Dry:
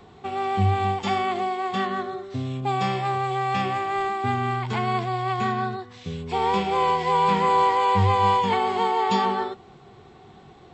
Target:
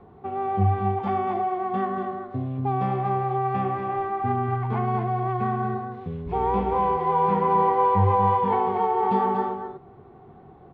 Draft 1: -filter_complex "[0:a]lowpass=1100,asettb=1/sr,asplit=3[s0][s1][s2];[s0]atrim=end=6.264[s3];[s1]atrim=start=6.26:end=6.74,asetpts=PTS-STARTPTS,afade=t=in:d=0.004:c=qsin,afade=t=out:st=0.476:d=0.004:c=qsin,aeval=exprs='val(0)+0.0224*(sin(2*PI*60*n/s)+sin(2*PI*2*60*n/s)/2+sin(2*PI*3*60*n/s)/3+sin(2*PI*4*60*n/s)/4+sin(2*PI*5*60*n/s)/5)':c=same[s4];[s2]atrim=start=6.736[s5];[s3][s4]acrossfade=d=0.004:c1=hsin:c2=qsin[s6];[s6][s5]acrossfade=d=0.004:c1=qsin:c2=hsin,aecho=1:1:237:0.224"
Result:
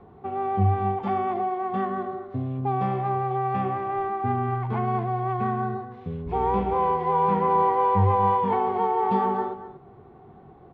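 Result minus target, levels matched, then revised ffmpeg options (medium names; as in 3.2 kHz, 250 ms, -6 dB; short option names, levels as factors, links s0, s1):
echo-to-direct -6.5 dB
-filter_complex "[0:a]lowpass=1100,asettb=1/sr,asplit=3[s0][s1][s2];[s0]atrim=end=6.264[s3];[s1]atrim=start=6.26:end=6.74,asetpts=PTS-STARTPTS,afade=t=in:d=0.004:c=qsin,afade=t=out:st=0.476:d=0.004:c=qsin,aeval=exprs='val(0)+0.0224*(sin(2*PI*60*n/s)+sin(2*PI*2*60*n/s)/2+sin(2*PI*3*60*n/s)/3+sin(2*PI*4*60*n/s)/4+sin(2*PI*5*60*n/s)/5)':c=same[s4];[s2]atrim=start=6.736[s5];[s3][s4]acrossfade=d=0.004:c1=hsin:c2=qsin[s6];[s6][s5]acrossfade=d=0.004:c1=qsin:c2=hsin,aecho=1:1:237:0.473"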